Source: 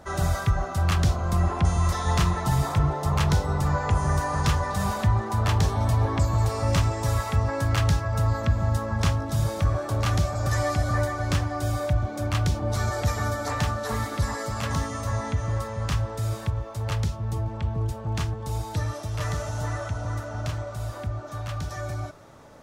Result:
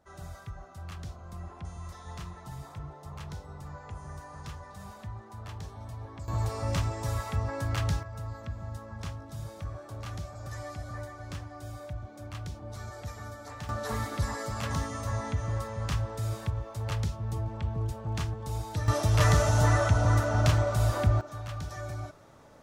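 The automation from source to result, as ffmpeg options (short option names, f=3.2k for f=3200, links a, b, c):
-af "asetnsamples=n=441:p=0,asendcmd='6.28 volume volume -7dB;8.03 volume volume -15dB;13.69 volume volume -4.5dB;18.88 volume volume 6.5dB;21.21 volume volume -5.5dB',volume=-19dB"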